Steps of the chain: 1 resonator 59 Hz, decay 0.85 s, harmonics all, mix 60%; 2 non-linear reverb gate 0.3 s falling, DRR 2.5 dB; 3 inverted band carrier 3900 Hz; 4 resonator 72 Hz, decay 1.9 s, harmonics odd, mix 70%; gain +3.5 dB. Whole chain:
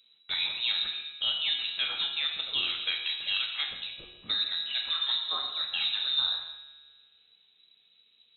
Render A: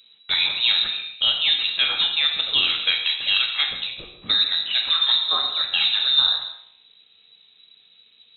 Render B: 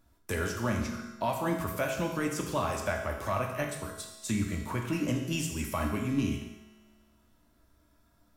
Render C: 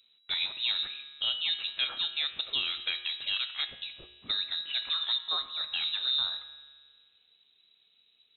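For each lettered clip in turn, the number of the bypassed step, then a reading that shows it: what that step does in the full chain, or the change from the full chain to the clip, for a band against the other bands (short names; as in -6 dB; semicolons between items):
4, loudness change +9.5 LU; 3, 4 kHz band -29.0 dB; 2, loudness change -1.5 LU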